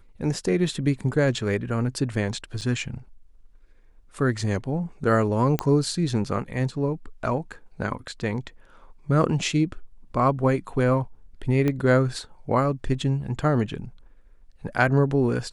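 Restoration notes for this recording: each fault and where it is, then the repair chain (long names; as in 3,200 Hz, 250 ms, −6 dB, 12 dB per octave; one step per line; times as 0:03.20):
0:02.61–0:02.62: drop-out 6.5 ms
0:05.59: click −9 dBFS
0:11.68: click −13 dBFS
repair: click removal
repair the gap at 0:02.61, 6.5 ms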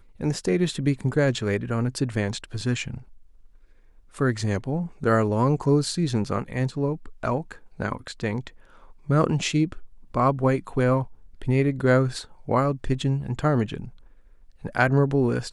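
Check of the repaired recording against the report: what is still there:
0:11.68: click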